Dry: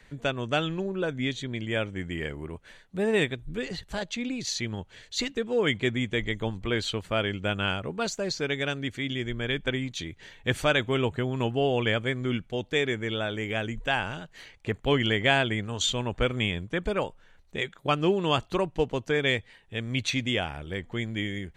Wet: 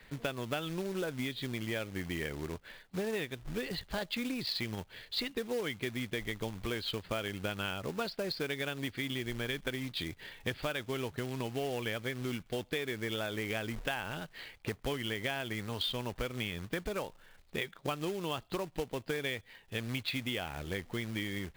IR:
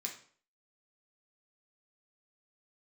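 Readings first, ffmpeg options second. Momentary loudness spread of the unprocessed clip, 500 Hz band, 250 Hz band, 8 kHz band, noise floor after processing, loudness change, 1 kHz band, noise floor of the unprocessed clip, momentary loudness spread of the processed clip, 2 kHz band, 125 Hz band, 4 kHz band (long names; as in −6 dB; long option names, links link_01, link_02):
10 LU, −9.0 dB, −8.0 dB, −9.0 dB, −60 dBFS, −8.5 dB, −9.5 dB, −57 dBFS, 4 LU, −8.5 dB, −9.0 dB, −7.0 dB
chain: -af "aresample=11025,aresample=44100,acompressor=threshold=-31dB:ratio=20,acrusher=bits=3:mode=log:mix=0:aa=0.000001,lowshelf=frequency=170:gain=-3.5"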